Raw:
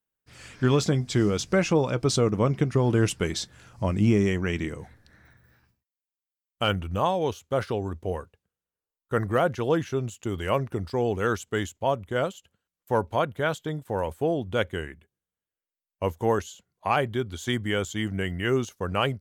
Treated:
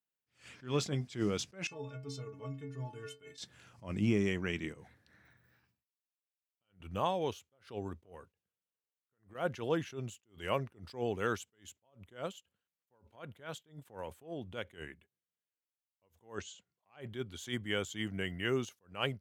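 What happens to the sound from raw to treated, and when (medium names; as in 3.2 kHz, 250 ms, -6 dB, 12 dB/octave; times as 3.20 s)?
1.67–3.38 s: inharmonic resonator 130 Hz, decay 0.53 s, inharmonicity 0.03
4.72–6.80 s: compression, threshold -39 dBFS
8.04–9.35 s: compression 4:1, threshold -35 dBFS
13.15–14.78 s: compression 2.5:1, threshold -29 dBFS
16.35–17.01 s: steep low-pass 8.5 kHz 96 dB/octave
whole clip: high-pass 100 Hz; peaking EQ 2.7 kHz +4.5 dB 1 oct; attacks held to a fixed rise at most 190 dB/s; trim -8.5 dB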